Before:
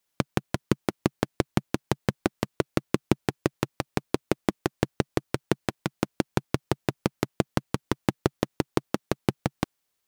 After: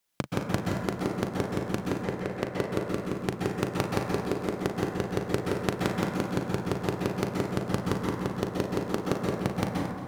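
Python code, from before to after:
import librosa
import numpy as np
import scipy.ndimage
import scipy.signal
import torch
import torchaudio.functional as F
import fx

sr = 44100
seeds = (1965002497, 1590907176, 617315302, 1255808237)

y = fx.graphic_eq_10(x, sr, hz=(500, 2000, 16000), db=(7, 6, -5), at=(1.88, 2.49))
y = fx.over_compress(y, sr, threshold_db=-25.0, ratio=-1.0)
y = fx.doubler(y, sr, ms=39.0, db=-11)
y = fx.echo_feedback(y, sr, ms=225, feedback_pct=58, wet_db=-14)
y = fx.rev_plate(y, sr, seeds[0], rt60_s=1.5, hf_ratio=0.35, predelay_ms=115, drr_db=-2.0)
y = y * librosa.db_to_amplitude(-3.0)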